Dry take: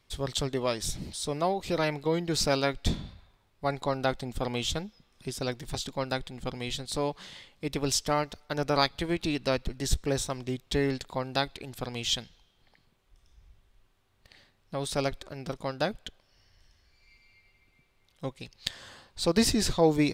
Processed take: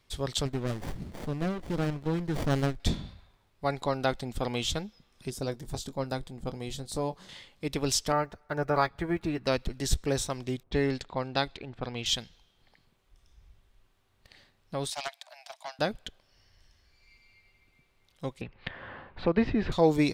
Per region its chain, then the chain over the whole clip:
0.45–2.80 s: peaking EQ 500 Hz -5.5 dB 0.98 oct + sliding maximum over 33 samples
5.30–7.29 s: peaking EQ 2.6 kHz -9 dB 2.2 oct + doubling 22 ms -13 dB + tape noise reduction on one side only decoder only
8.12–9.47 s: block-companded coder 7-bit + resonant high shelf 2.4 kHz -10.5 dB, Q 1.5 + comb of notches 260 Hz
10.63–12.06 s: level-controlled noise filter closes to 790 Hz, open at -26 dBFS + treble shelf 11 kHz -11 dB
14.90–15.79 s: steep high-pass 630 Hz 96 dB/octave + peaking EQ 1.3 kHz -13 dB 0.45 oct + loudspeaker Doppler distortion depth 0.17 ms
18.41–19.72 s: low-pass 2.5 kHz 24 dB/octave + three bands compressed up and down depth 40%
whole clip: none

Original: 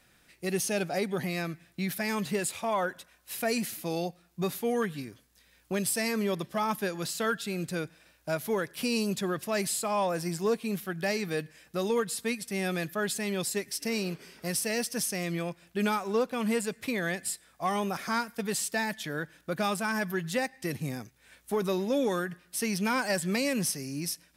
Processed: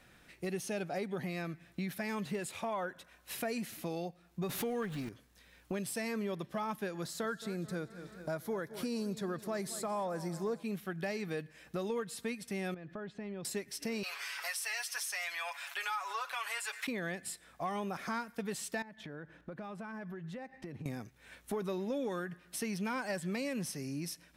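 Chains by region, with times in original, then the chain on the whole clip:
4.49–5.09 s: jump at every zero crossing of -38 dBFS + swell ahead of each attack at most 31 dB/s
7.01–10.63 s: peaking EQ 2.7 kHz -11 dB 0.42 oct + modulated delay 218 ms, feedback 56%, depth 73 cents, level -17 dB
12.74–13.45 s: compression, threshold -39 dBFS + tape spacing loss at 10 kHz 32 dB
14.03–16.87 s: high-pass 960 Hz 24 dB/octave + comb 7.1 ms, depth 76% + level flattener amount 50%
18.82–20.86 s: low-pass 1.4 kHz 6 dB/octave + compression 8:1, threshold -44 dBFS
whole clip: treble shelf 4.4 kHz -8.5 dB; band-stop 4.8 kHz, Q 29; compression 2.5:1, threshold -43 dBFS; trim +3.5 dB

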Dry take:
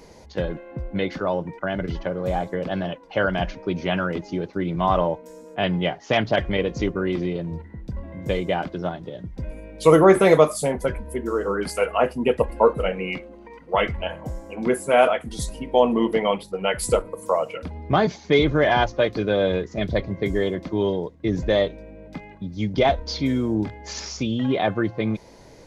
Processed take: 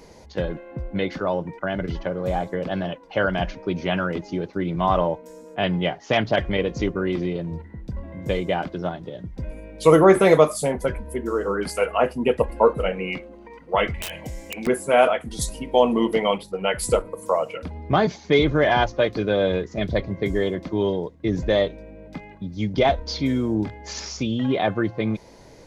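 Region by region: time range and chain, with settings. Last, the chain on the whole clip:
13.94–14.67 s: resonant high shelf 1.7 kHz +9 dB, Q 3 + integer overflow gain 17 dB + compression, threshold -28 dBFS
15.41–16.38 s: treble shelf 4.2 kHz +7.5 dB + band-stop 1.7 kHz, Q 13
whole clip: none

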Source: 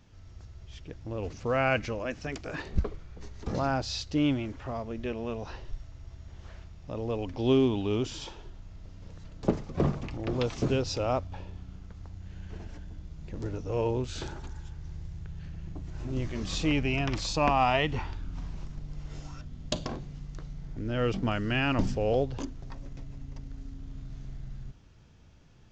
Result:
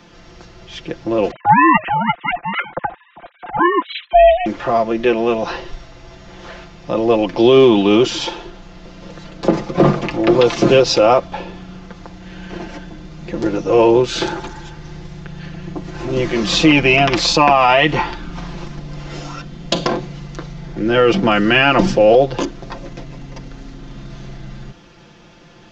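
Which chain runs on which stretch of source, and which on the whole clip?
1.31–4.46 s: formants replaced by sine waves + ring modulator 360 Hz
whole clip: three-band isolator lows -16 dB, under 200 Hz, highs -13 dB, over 5.9 kHz; comb 5.8 ms, depth 68%; loudness maximiser +19.5 dB; trim -1 dB

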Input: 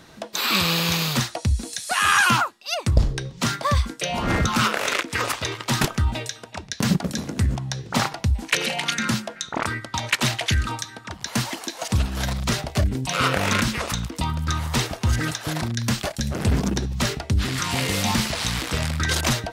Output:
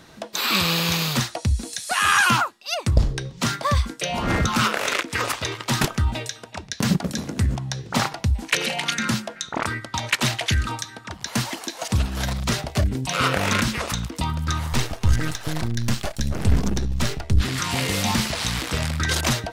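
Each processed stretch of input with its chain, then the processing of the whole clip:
14.72–17.41 s: partial rectifier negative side -7 dB + bass shelf 70 Hz +11 dB
whole clip: none

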